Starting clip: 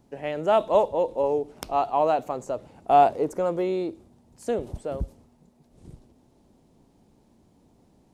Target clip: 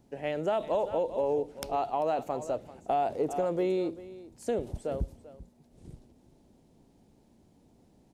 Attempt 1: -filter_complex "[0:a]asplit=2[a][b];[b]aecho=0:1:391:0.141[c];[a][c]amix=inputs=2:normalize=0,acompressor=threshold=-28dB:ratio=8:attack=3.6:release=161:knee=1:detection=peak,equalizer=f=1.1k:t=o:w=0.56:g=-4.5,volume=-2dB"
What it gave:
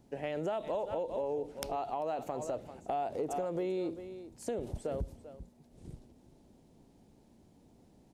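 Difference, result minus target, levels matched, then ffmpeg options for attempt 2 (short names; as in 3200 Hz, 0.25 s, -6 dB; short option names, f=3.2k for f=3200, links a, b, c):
compressor: peak gain reduction +6.5 dB
-filter_complex "[0:a]asplit=2[a][b];[b]aecho=0:1:391:0.141[c];[a][c]amix=inputs=2:normalize=0,acompressor=threshold=-20.5dB:ratio=8:attack=3.6:release=161:knee=1:detection=peak,equalizer=f=1.1k:t=o:w=0.56:g=-4.5,volume=-2dB"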